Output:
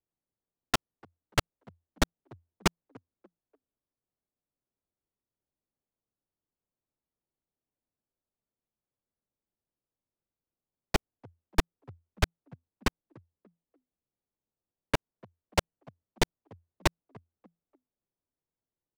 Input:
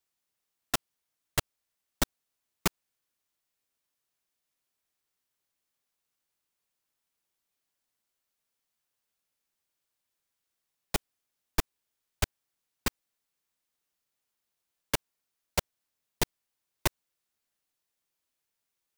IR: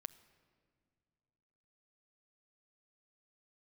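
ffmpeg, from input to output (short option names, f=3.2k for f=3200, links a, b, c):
-filter_complex "[0:a]asplit=3[a][b][c];[a]afade=t=out:st=12.87:d=0.02[d];[b]aemphasis=mode=reproduction:type=75kf,afade=t=in:st=12.87:d=0.02,afade=t=out:st=14.94:d=0.02[e];[c]afade=t=in:st=14.94:d=0.02[f];[d][e][f]amix=inputs=3:normalize=0,asplit=4[g][h][i][j];[h]adelay=292,afreqshift=84,volume=-23dB[k];[i]adelay=584,afreqshift=168,volume=-31dB[l];[j]adelay=876,afreqshift=252,volume=-38.9dB[m];[g][k][l][m]amix=inputs=4:normalize=0,adynamicsmooth=sensitivity=6:basefreq=600,volume=4dB"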